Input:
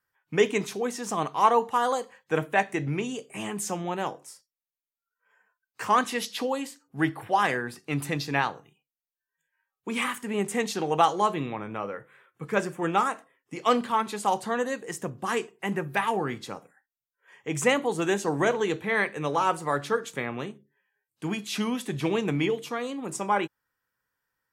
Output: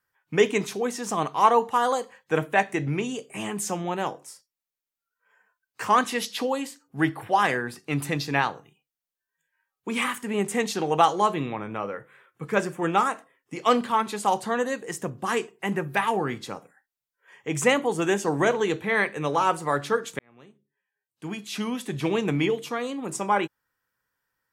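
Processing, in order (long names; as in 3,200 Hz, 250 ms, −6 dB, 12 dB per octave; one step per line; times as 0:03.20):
0:17.81–0:18.25: notch filter 4,000 Hz, Q 6.6
0:20.19–0:22.28: fade in
level +2 dB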